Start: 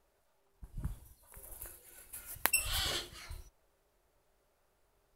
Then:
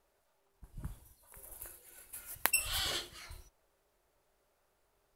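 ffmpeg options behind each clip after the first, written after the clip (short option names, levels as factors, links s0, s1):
-af "lowshelf=f=230:g=-4.5"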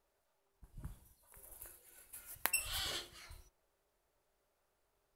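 -af "bandreject=f=180.4:t=h:w=4,bandreject=f=360.8:t=h:w=4,bandreject=f=541.2:t=h:w=4,bandreject=f=721.6:t=h:w=4,bandreject=f=902:t=h:w=4,bandreject=f=1082.4:t=h:w=4,bandreject=f=1262.8:t=h:w=4,bandreject=f=1443.2:t=h:w=4,bandreject=f=1623.6:t=h:w=4,bandreject=f=1804:t=h:w=4,bandreject=f=1984.4:t=h:w=4,bandreject=f=2164.8:t=h:w=4,bandreject=f=2345.2:t=h:w=4,bandreject=f=2525.6:t=h:w=4,volume=0.562"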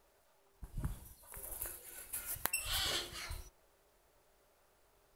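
-af "acompressor=threshold=0.00708:ratio=6,volume=3.16"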